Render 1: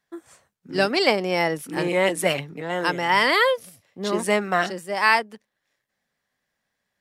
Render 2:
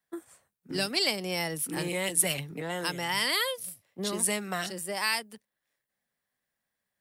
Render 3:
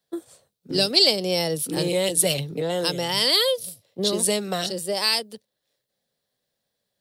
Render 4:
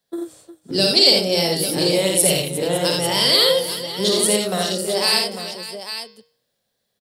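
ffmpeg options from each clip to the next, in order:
ffmpeg -i in.wav -filter_complex "[0:a]agate=range=-8dB:threshold=-42dB:ratio=16:detection=peak,acrossover=split=150|3000[link_01][link_02][link_03];[link_02]acompressor=threshold=-34dB:ratio=4[link_04];[link_01][link_04][link_03]amix=inputs=3:normalize=0,acrossover=split=1800[link_05][link_06];[link_06]aexciter=amount=3.2:drive=3.1:freq=8400[link_07];[link_05][link_07]amix=inputs=2:normalize=0" out.wav
ffmpeg -i in.wav -af "equalizer=frequency=125:width_type=o:width=1:gain=6,equalizer=frequency=500:width_type=o:width=1:gain=10,equalizer=frequency=1000:width_type=o:width=1:gain=-3,equalizer=frequency=2000:width_type=o:width=1:gain=-7,equalizer=frequency=4000:width_type=o:width=1:gain=11,volume=3dB" out.wav
ffmpeg -i in.wav -filter_complex "[0:a]bandreject=frequency=155.6:width_type=h:width=4,bandreject=frequency=311.2:width_type=h:width=4,bandreject=frequency=466.8:width_type=h:width=4,bandreject=frequency=622.4:width_type=h:width=4,bandreject=frequency=778:width_type=h:width=4,bandreject=frequency=933.6:width_type=h:width=4,bandreject=frequency=1089.2:width_type=h:width=4,bandreject=frequency=1244.8:width_type=h:width=4,bandreject=frequency=1400.4:width_type=h:width=4,bandreject=frequency=1556:width_type=h:width=4,bandreject=frequency=1711.6:width_type=h:width=4,bandreject=frequency=1867.2:width_type=h:width=4,bandreject=frequency=2022.8:width_type=h:width=4,bandreject=frequency=2178.4:width_type=h:width=4,bandreject=frequency=2334:width_type=h:width=4,bandreject=frequency=2489.6:width_type=h:width=4,bandreject=frequency=2645.2:width_type=h:width=4,bandreject=frequency=2800.8:width_type=h:width=4,bandreject=frequency=2956.4:width_type=h:width=4,bandreject=frequency=3112:width_type=h:width=4,bandreject=frequency=3267.6:width_type=h:width=4,bandreject=frequency=3423.2:width_type=h:width=4,bandreject=frequency=3578.8:width_type=h:width=4,bandreject=frequency=3734.4:width_type=h:width=4,bandreject=frequency=3890:width_type=h:width=4,bandreject=frequency=4045.6:width_type=h:width=4,bandreject=frequency=4201.2:width_type=h:width=4,bandreject=frequency=4356.8:width_type=h:width=4,bandreject=frequency=4512.4:width_type=h:width=4,bandreject=frequency=4668:width_type=h:width=4,bandreject=frequency=4823.6:width_type=h:width=4,bandreject=frequency=4979.2:width_type=h:width=4,bandreject=frequency=5134.8:width_type=h:width=4,bandreject=frequency=5290.4:width_type=h:width=4,bandreject=frequency=5446:width_type=h:width=4,bandreject=frequency=5601.6:width_type=h:width=4,bandreject=frequency=5757.2:width_type=h:width=4,asplit=2[link_01][link_02];[link_02]aecho=0:1:53|85|357|557|847:0.631|0.631|0.224|0.2|0.335[link_03];[link_01][link_03]amix=inputs=2:normalize=0,volume=2dB" out.wav

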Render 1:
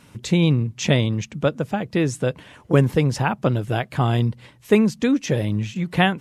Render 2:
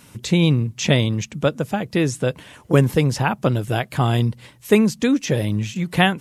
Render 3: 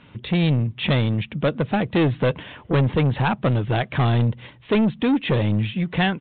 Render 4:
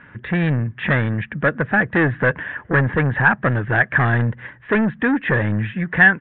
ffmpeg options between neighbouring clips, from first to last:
ffmpeg -i in.wav -filter_complex "[0:a]highshelf=frequency=6000:gain=10.5,acrossover=split=5100[link_01][link_02];[link_02]alimiter=level_in=1dB:limit=-24dB:level=0:latency=1:release=177,volume=-1dB[link_03];[link_01][link_03]amix=inputs=2:normalize=0,volume=1dB" out.wav
ffmpeg -i in.wav -af "dynaudnorm=framelen=190:gausssize=5:maxgain=11.5dB,aresample=8000,asoftclip=type=tanh:threshold=-14.5dB,aresample=44100" out.wav
ffmpeg -i in.wav -af "lowpass=frequency=1700:width_type=q:width=8.9" out.wav

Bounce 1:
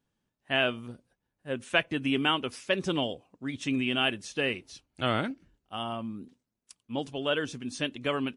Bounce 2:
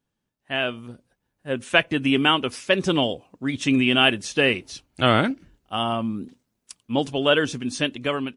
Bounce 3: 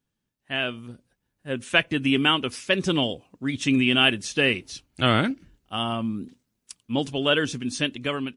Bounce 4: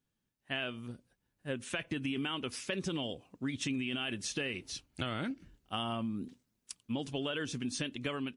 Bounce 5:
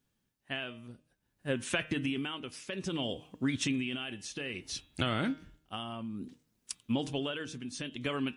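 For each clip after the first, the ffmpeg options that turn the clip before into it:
ffmpeg -i in.wav -af "dynaudnorm=framelen=430:gausssize=5:maxgain=10.5dB" out.wav
ffmpeg -i in.wav -af "equalizer=frequency=720:width_type=o:width=1.9:gain=-5" out.wav
ffmpeg -i in.wav -af "alimiter=limit=-15.5dB:level=0:latency=1:release=25,acompressor=threshold=-29dB:ratio=6,volume=-3.5dB" out.wav
ffmpeg -i in.wav -af "tremolo=f=0.59:d=0.69,bandreject=frequency=155:width_type=h:width=4,bandreject=frequency=310:width_type=h:width=4,bandreject=frequency=465:width_type=h:width=4,bandreject=frequency=620:width_type=h:width=4,bandreject=frequency=775:width_type=h:width=4,bandreject=frequency=930:width_type=h:width=4,bandreject=frequency=1085:width_type=h:width=4,bandreject=frequency=1240:width_type=h:width=4,bandreject=frequency=1395:width_type=h:width=4,bandreject=frequency=1550:width_type=h:width=4,bandreject=frequency=1705:width_type=h:width=4,bandreject=frequency=1860:width_type=h:width=4,bandreject=frequency=2015:width_type=h:width=4,bandreject=frequency=2170:width_type=h:width=4,bandreject=frequency=2325:width_type=h:width=4,bandreject=frequency=2480:width_type=h:width=4,bandreject=frequency=2635:width_type=h:width=4,bandreject=frequency=2790:width_type=h:width=4,bandreject=frequency=2945:width_type=h:width=4,bandreject=frequency=3100:width_type=h:width=4,bandreject=frequency=3255:width_type=h:width=4,bandreject=frequency=3410:width_type=h:width=4,bandreject=frequency=3565:width_type=h:width=4,bandreject=frequency=3720:width_type=h:width=4,bandreject=frequency=3875:width_type=h:width=4,volume=5.5dB" out.wav

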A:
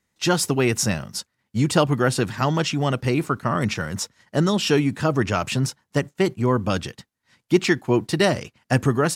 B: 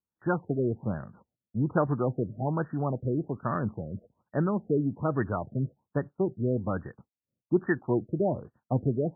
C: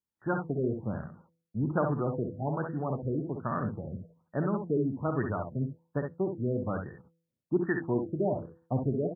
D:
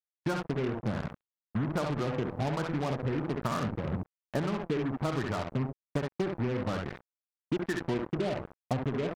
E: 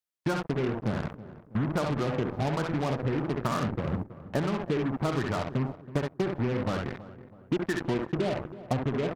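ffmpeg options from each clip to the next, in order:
ffmpeg -i in.wav -af "agate=range=-13dB:threshold=-48dB:ratio=16:detection=peak,afftfilt=real='re*lt(b*sr/1024,640*pow(1900/640,0.5+0.5*sin(2*PI*1.2*pts/sr)))':imag='im*lt(b*sr/1024,640*pow(1900/640,0.5+0.5*sin(2*PI*1.2*pts/sr)))':win_size=1024:overlap=0.75,volume=-7dB" out.wav
ffmpeg -i in.wav -filter_complex "[0:a]bandreject=frequency=165.9:width_type=h:width=4,bandreject=frequency=331.8:width_type=h:width=4,bandreject=frequency=497.7:width_type=h:width=4,asplit=2[link_01][link_02];[link_02]aecho=0:1:54|66:0.316|0.473[link_03];[link_01][link_03]amix=inputs=2:normalize=0,volume=-3dB" out.wav
ffmpeg -i in.wav -af "acompressor=threshold=-36dB:ratio=12,acrusher=bits=6:mix=0:aa=0.5,volume=8.5dB" out.wav
ffmpeg -i in.wav -filter_complex "[0:a]asplit=2[link_01][link_02];[link_02]adelay=325,lowpass=frequency=1400:poles=1,volume=-15.5dB,asplit=2[link_03][link_04];[link_04]adelay=325,lowpass=frequency=1400:poles=1,volume=0.47,asplit=2[link_05][link_06];[link_06]adelay=325,lowpass=frequency=1400:poles=1,volume=0.47,asplit=2[link_07][link_08];[link_08]adelay=325,lowpass=frequency=1400:poles=1,volume=0.47[link_09];[link_01][link_03][link_05][link_07][link_09]amix=inputs=5:normalize=0,volume=2.5dB" out.wav

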